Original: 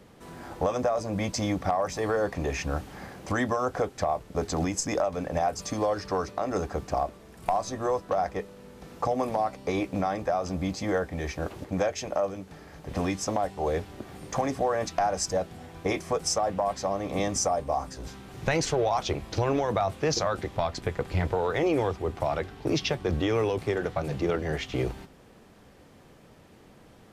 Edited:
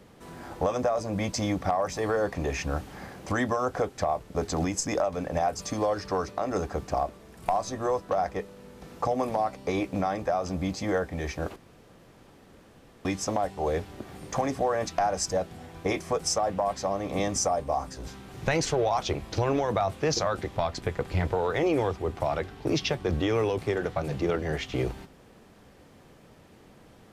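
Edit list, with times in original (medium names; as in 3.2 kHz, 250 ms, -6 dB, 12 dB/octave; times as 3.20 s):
11.56–13.05 s: room tone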